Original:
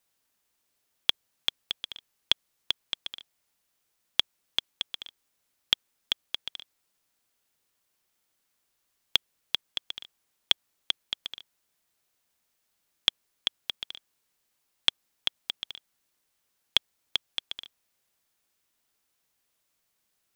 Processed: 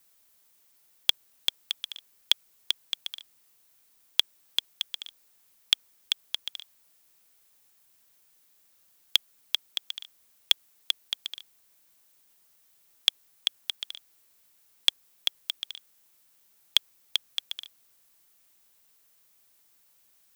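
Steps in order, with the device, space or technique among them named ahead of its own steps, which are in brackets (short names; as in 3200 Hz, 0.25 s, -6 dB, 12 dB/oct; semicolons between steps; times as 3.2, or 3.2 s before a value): turntable without a phono preamp (RIAA curve recording; white noise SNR 35 dB); gain -4 dB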